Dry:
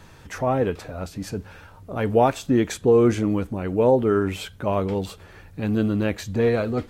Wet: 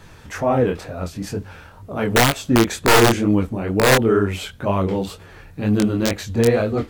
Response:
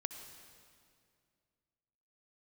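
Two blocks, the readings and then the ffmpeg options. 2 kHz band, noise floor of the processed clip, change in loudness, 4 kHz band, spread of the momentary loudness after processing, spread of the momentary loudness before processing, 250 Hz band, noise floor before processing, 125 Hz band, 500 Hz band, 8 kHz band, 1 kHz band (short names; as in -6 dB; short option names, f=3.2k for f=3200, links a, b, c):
+11.5 dB, -44 dBFS, +4.0 dB, +13.5 dB, 15 LU, 15 LU, +3.5 dB, -47 dBFS, +4.5 dB, +1.5 dB, +12.5 dB, +5.0 dB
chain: -af "aeval=exprs='(mod(3.35*val(0)+1,2)-1)/3.35':c=same,flanger=delay=19:depth=7.6:speed=2.1,volume=6.5dB"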